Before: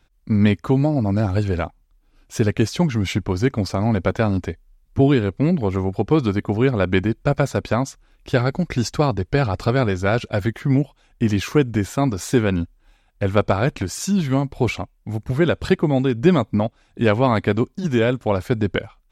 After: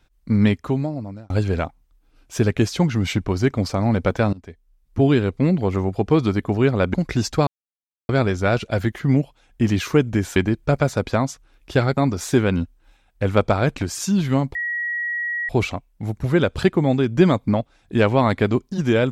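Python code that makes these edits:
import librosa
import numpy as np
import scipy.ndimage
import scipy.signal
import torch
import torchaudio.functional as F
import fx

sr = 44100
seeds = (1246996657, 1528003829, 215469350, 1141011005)

y = fx.edit(x, sr, fx.fade_out_span(start_s=0.38, length_s=0.92),
    fx.fade_in_from(start_s=4.33, length_s=0.84, floor_db=-22.5),
    fx.move(start_s=6.94, length_s=1.61, to_s=11.97),
    fx.silence(start_s=9.08, length_s=0.62),
    fx.insert_tone(at_s=14.55, length_s=0.94, hz=1910.0, db=-22.0), tone=tone)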